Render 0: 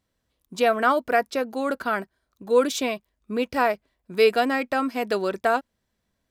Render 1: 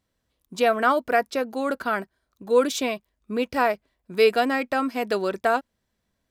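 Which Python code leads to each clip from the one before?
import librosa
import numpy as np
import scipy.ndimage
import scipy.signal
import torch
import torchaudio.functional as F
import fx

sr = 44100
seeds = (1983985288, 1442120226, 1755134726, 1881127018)

y = x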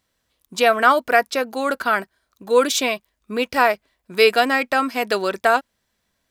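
y = fx.tilt_shelf(x, sr, db=-4.5, hz=640.0)
y = y * librosa.db_to_amplitude(4.0)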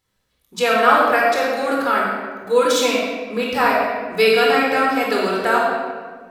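y = fx.room_shoebox(x, sr, seeds[0], volume_m3=1700.0, walls='mixed', distance_m=4.1)
y = y * librosa.db_to_amplitude(-5.0)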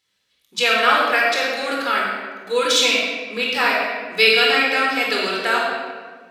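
y = fx.weighting(x, sr, curve='D')
y = y * librosa.db_to_amplitude(-4.5)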